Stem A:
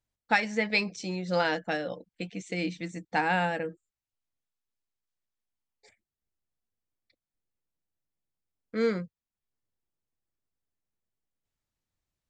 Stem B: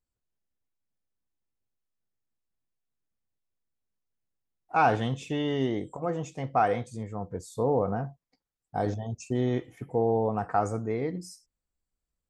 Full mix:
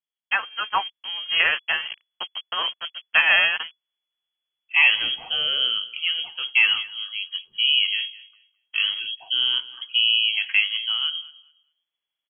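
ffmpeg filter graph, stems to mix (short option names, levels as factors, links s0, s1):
-filter_complex "[0:a]equalizer=f=430:w=3.2:g=-13,adynamicsmooth=sensitivity=7.5:basefreq=710,aeval=exprs='sgn(val(0))*max(abs(val(0))-0.00891,0)':c=same,volume=1.26[s0];[1:a]volume=0.631,asplit=3[s1][s2][s3];[s2]volume=0.106[s4];[s3]apad=whole_len=542030[s5];[s0][s5]sidechaincompress=threshold=0.00398:ratio=3:attack=16:release=204[s6];[s4]aecho=0:1:208|416|624:1|0.2|0.04[s7];[s6][s1][s7]amix=inputs=3:normalize=0,lowshelf=f=97:g=-10.5,dynaudnorm=f=540:g=3:m=3.16,lowpass=f=2900:t=q:w=0.5098,lowpass=f=2900:t=q:w=0.6013,lowpass=f=2900:t=q:w=0.9,lowpass=f=2900:t=q:w=2.563,afreqshift=-3400"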